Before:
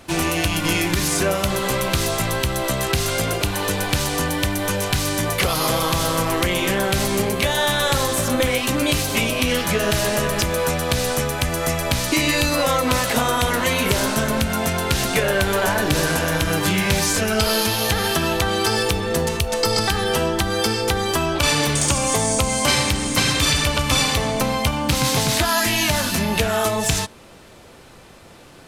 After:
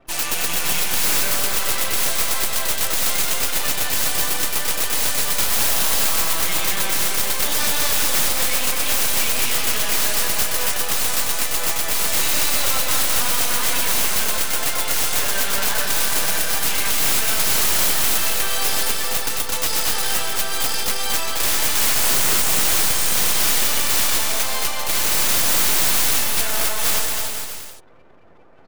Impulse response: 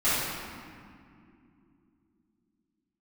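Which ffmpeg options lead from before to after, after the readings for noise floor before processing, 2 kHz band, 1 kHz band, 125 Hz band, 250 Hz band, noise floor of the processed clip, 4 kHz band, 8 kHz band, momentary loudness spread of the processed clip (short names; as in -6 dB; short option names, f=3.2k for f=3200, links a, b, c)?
-45 dBFS, -2.0 dB, -4.0 dB, -13.5 dB, -12.5 dB, -25 dBFS, +0.5 dB, +4.5 dB, 5 LU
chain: -filter_complex "[0:a]afftfilt=real='re*gte(hypot(re,im),0.01)':imag='im*gte(hypot(re,im),0.01)':win_size=1024:overlap=0.75,aemphasis=mode=production:type=bsi,bandreject=f=60:t=h:w=6,bandreject=f=120:t=h:w=6,bandreject=f=180:t=h:w=6,bandreject=f=240:t=h:w=6,acrossover=split=580[a][b];[a]acompressor=threshold=-42dB:ratio=12[c];[c][b]amix=inputs=2:normalize=0,aeval=exprs='max(val(0),0)':c=same,aphaser=in_gain=1:out_gain=1:delay=2.7:decay=0.22:speed=1.6:type=triangular,aeval=exprs='(mod(3.98*val(0)+1,2)-1)/3.98':c=same,asplit=2[d][e];[e]aecho=0:1:220|396|536.8|649.4|739.6:0.631|0.398|0.251|0.158|0.1[f];[d][f]amix=inputs=2:normalize=0"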